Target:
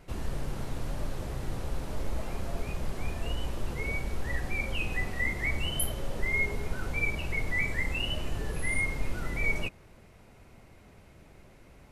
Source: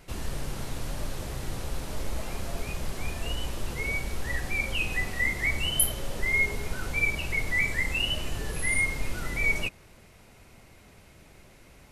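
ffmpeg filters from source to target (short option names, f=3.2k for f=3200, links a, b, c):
-af "highshelf=f=2.1k:g=-8.5"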